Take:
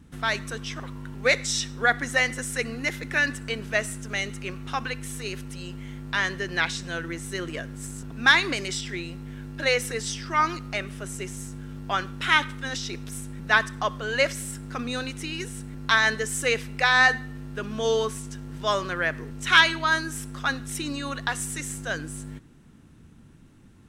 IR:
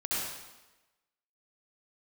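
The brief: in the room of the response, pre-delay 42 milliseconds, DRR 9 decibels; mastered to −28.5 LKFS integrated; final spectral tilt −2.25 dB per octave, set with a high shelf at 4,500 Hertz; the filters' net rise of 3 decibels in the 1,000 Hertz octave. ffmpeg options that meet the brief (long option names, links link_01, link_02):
-filter_complex "[0:a]equalizer=frequency=1000:width_type=o:gain=3.5,highshelf=frequency=4500:gain=5,asplit=2[link_01][link_02];[1:a]atrim=start_sample=2205,adelay=42[link_03];[link_02][link_03]afir=irnorm=-1:irlink=0,volume=-16dB[link_04];[link_01][link_04]amix=inputs=2:normalize=0,volume=-5dB"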